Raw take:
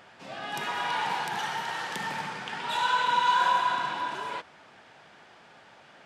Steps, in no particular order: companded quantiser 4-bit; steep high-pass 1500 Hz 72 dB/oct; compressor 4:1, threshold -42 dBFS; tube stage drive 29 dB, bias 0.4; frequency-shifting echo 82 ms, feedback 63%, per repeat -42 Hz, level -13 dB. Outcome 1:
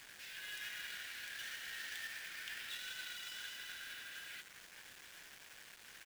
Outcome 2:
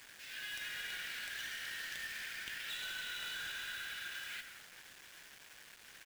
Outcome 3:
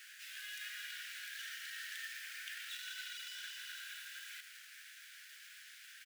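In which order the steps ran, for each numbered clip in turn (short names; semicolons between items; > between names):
tube stage > compressor > steep high-pass > frequency-shifting echo > companded quantiser; steep high-pass > tube stage > frequency-shifting echo > compressor > companded quantiser; frequency-shifting echo > tube stage > compressor > companded quantiser > steep high-pass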